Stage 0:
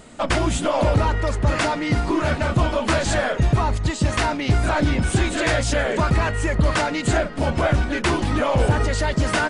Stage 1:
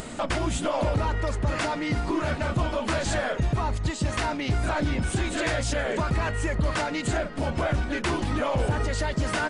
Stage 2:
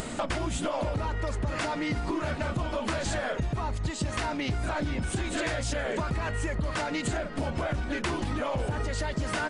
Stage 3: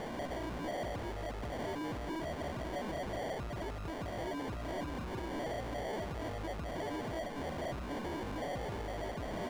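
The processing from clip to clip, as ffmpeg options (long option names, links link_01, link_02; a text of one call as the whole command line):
ffmpeg -i in.wav -af "acompressor=mode=upward:threshold=-22dB:ratio=2.5,alimiter=limit=-12.5dB:level=0:latency=1:release=105,volume=-4.5dB" out.wav
ffmpeg -i in.wav -af "acompressor=threshold=-28dB:ratio=6,volume=1.5dB" out.wav
ffmpeg -i in.wav -filter_complex "[0:a]acrusher=samples=34:mix=1:aa=0.000001,asoftclip=type=tanh:threshold=-31dB,asplit=2[link_01][link_02];[link_02]highpass=frequency=720:poles=1,volume=16dB,asoftclip=type=tanh:threshold=-31dB[link_03];[link_01][link_03]amix=inputs=2:normalize=0,lowpass=frequency=2900:poles=1,volume=-6dB,volume=-2.5dB" out.wav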